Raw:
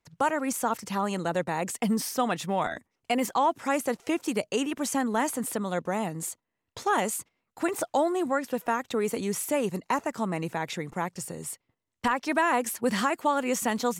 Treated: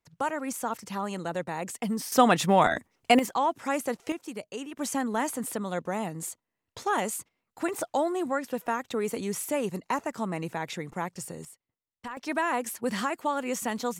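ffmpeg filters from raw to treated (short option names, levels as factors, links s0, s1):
-af "asetnsamples=n=441:p=0,asendcmd='2.12 volume volume 7dB;3.19 volume volume -2dB;4.12 volume volume -9.5dB;4.79 volume volume -2dB;11.45 volume volume -13dB;12.17 volume volume -3.5dB',volume=0.631"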